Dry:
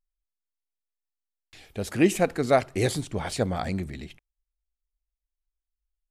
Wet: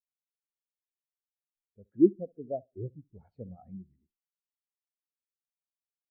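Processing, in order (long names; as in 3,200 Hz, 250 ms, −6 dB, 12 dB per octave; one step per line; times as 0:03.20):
treble cut that deepens with the level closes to 540 Hz, closed at −20.5 dBFS
tape delay 68 ms, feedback 47%, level −10.5 dB
every bin expanded away from the loudest bin 2.5 to 1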